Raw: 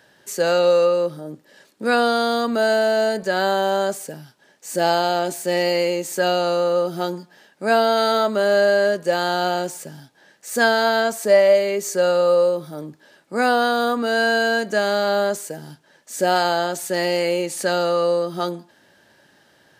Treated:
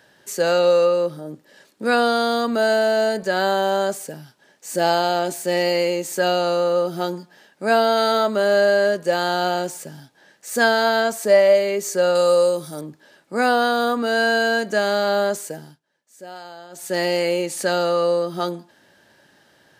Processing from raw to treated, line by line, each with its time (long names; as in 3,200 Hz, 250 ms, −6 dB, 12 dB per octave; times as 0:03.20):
0:12.15–0:12.81: parametric band 8,600 Hz +13.5 dB 1.7 octaves
0:15.55–0:16.95: duck −19 dB, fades 0.25 s